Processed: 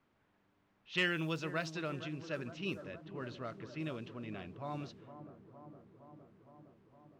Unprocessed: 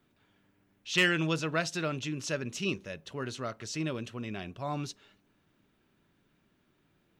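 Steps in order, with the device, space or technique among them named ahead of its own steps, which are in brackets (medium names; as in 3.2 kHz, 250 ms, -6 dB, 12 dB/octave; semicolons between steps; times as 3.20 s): low-pass 5.3 kHz 12 dB/octave; cassette deck with a dynamic noise filter (white noise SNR 25 dB; level-controlled noise filter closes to 1.5 kHz, open at -25.5 dBFS); bucket-brigade echo 462 ms, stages 4096, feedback 75%, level -12 dB; trim -7 dB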